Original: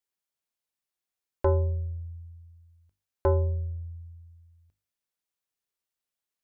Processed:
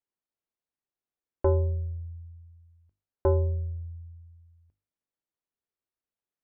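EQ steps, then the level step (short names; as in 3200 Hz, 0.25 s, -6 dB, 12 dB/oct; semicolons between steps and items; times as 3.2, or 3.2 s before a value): LPF 1000 Hz 6 dB/oct; bell 320 Hz +3 dB; 0.0 dB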